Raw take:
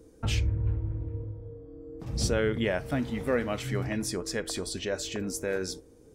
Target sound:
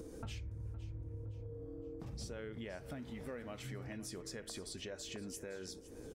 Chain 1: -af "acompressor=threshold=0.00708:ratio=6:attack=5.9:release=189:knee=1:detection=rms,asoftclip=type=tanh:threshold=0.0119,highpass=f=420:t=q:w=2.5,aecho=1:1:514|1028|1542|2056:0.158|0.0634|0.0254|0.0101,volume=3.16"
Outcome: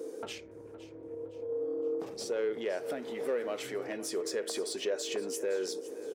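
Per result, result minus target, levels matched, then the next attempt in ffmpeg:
compression: peak gain reduction -9.5 dB; 500 Hz band +4.5 dB
-af "acompressor=threshold=0.00188:ratio=6:attack=5.9:release=189:knee=1:detection=rms,asoftclip=type=tanh:threshold=0.0119,highpass=f=420:t=q:w=2.5,aecho=1:1:514|1028|1542|2056:0.158|0.0634|0.0254|0.0101,volume=3.16"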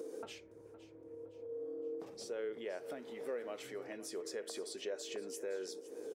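500 Hz band +5.0 dB
-af "acompressor=threshold=0.00188:ratio=6:attack=5.9:release=189:knee=1:detection=rms,asoftclip=type=tanh:threshold=0.0119,aecho=1:1:514|1028|1542|2056:0.158|0.0634|0.0254|0.0101,volume=3.16"

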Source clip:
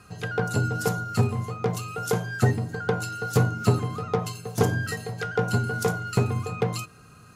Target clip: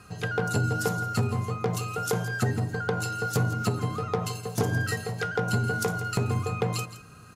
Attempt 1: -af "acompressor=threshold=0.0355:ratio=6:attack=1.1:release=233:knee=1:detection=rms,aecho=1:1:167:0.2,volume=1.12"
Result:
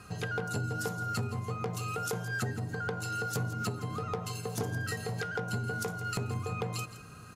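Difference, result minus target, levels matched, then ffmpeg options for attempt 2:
compression: peak gain reduction +8.5 dB
-af "acompressor=threshold=0.112:ratio=6:attack=1.1:release=233:knee=1:detection=rms,aecho=1:1:167:0.2,volume=1.12"

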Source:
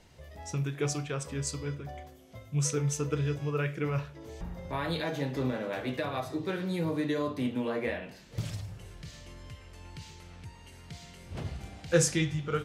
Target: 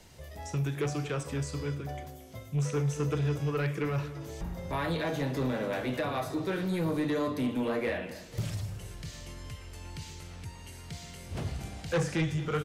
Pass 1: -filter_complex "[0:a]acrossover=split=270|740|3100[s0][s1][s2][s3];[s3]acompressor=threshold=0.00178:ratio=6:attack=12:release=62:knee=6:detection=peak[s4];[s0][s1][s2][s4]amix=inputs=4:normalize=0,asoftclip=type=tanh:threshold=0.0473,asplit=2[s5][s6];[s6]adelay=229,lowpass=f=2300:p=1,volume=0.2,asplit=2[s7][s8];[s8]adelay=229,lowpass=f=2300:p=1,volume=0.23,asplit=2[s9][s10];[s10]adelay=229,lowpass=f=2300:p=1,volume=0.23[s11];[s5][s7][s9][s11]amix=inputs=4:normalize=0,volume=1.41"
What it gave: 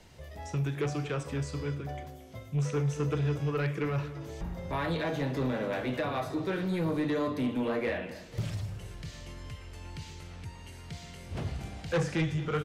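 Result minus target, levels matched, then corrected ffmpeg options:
8 kHz band -4.5 dB
-filter_complex "[0:a]acrossover=split=270|740|3100[s0][s1][s2][s3];[s3]acompressor=threshold=0.00178:ratio=6:attack=12:release=62:knee=6:detection=peak,highshelf=f=5600:g=8[s4];[s0][s1][s2][s4]amix=inputs=4:normalize=0,asoftclip=type=tanh:threshold=0.0473,asplit=2[s5][s6];[s6]adelay=229,lowpass=f=2300:p=1,volume=0.2,asplit=2[s7][s8];[s8]adelay=229,lowpass=f=2300:p=1,volume=0.23,asplit=2[s9][s10];[s10]adelay=229,lowpass=f=2300:p=1,volume=0.23[s11];[s5][s7][s9][s11]amix=inputs=4:normalize=0,volume=1.41"

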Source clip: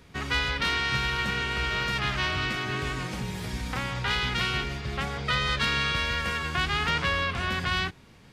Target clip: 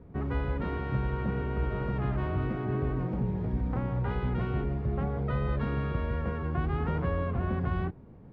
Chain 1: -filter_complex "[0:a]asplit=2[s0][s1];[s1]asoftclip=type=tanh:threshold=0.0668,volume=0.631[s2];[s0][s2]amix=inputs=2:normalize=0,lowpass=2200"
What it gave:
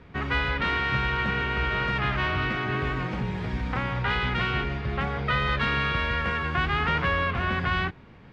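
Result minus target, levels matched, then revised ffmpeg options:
2 kHz band +12.0 dB
-filter_complex "[0:a]asplit=2[s0][s1];[s1]asoftclip=type=tanh:threshold=0.0668,volume=0.631[s2];[s0][s2]amix=inputs=2:normalize=0,lowpass=600"

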